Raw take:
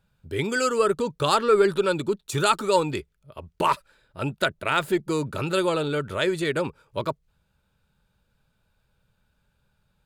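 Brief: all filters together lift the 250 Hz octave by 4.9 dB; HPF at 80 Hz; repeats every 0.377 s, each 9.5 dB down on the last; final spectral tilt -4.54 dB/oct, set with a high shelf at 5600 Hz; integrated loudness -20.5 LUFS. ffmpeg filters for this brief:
-af "highpass=80,equalizer=f=250:t=o:g=7.5,highshelf=f=5.6k:g=7,aecho=1:1:377|754|1131|1508:0.335|0.111|0.0365|0.012,volume=1.5dB"

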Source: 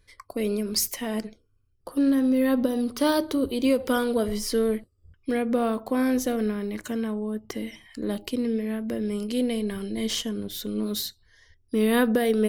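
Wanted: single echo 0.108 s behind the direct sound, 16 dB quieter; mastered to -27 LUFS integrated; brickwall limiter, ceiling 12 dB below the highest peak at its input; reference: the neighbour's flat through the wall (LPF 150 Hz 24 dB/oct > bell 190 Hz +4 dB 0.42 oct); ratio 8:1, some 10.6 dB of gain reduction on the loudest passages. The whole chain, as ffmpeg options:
-af "acompressor=threshold=-29dB:ratio=8,alimiter=level_in=2dB:limit=-24dB:level=0:latency=1,volume=-2dB,lowpass=f=150:w=0.5412,lowpass=f=150:w=1.3066,equalizer=f=190:t=o:w=0.42:g=4,aecho=1:1:108:0.158,volume=21.5dB"

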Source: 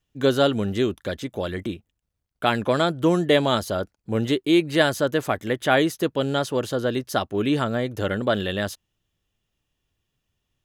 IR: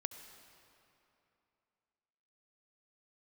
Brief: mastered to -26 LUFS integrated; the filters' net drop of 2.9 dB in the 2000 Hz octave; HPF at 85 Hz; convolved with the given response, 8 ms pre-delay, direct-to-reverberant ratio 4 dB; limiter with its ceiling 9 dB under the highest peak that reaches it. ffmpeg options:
-filter_complex "[0:a]highpass=85,equalizer=f=2k:t=o:g=-4,alimiter=limit=-14dB:level=0:latency=1,asplit=2[a][b];[1:a]atrim=start_sample=2205,adelay=8[c];[b][c]afir=irnorm=-1:irlink=0,volume=-2.5dB[d];[a][d]amix=inputs=2:normalize=0,volume=-1dB"

